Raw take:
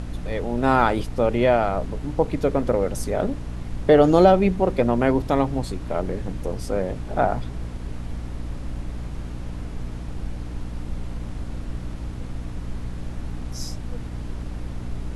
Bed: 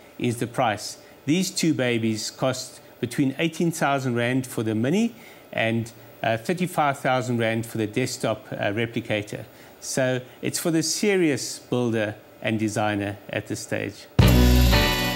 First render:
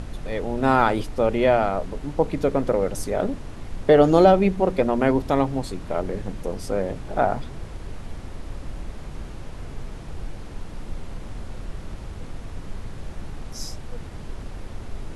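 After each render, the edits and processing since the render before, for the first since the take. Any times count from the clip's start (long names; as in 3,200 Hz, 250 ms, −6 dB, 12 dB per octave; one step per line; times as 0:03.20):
hum removal 60 Hz, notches 5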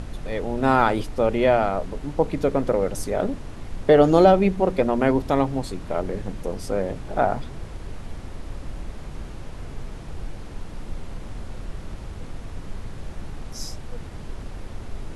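no processing that can be heard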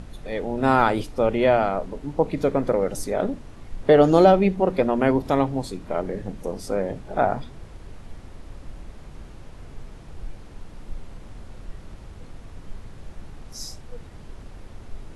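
noise reduction from a noise print 6 dB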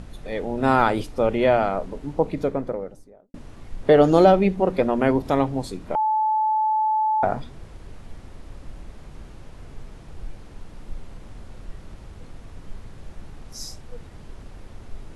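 0:02.07–0:03.34: fade out and dull
0:05.95–0:07.23: beep over 867 Hz −18 dBFS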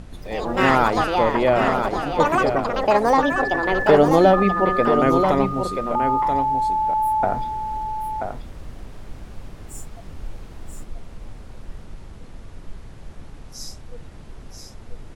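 delay with pitch and tempo change per echo 127 ms, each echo +6 semitones, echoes 2
on a send: single-tap delay 983 ms −6.5 dB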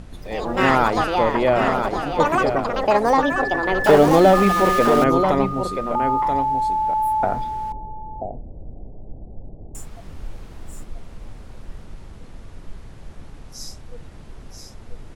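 0:03.84–0:05.04: converter with a step at zero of −22 dBFS
0:07.72–0:09.75: Butterworth low-pass 770 Hz 48 dB per octave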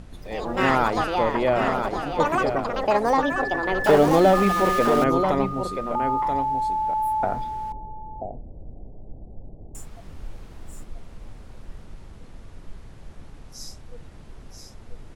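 level −3.5 dB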